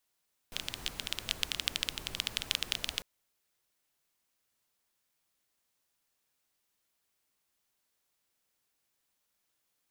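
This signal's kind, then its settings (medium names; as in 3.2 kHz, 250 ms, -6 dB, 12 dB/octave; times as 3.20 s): rain from filtered ticks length 2.50 s, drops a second 14, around 3.2 kHz, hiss -9 dB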